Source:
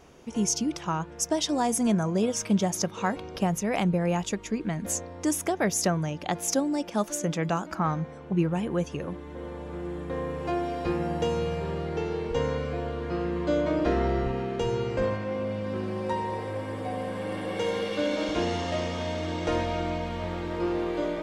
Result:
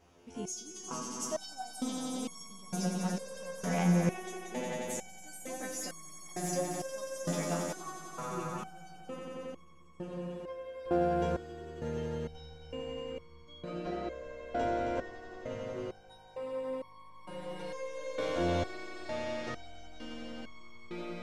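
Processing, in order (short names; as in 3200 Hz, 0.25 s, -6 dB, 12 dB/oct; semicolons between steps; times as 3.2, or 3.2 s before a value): swelling echo 90 ms, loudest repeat 5, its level -7.5 dB; stepped resonator 2.2 Hz 87–1100 Hz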